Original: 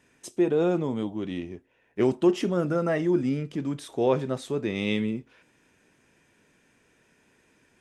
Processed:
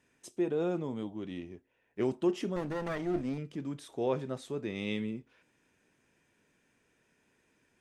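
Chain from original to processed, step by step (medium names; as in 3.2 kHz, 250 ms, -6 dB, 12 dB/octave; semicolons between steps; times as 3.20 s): 2.56–3.38 s: comb filter that takes the minimum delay 0.47 ms; trim -8 dB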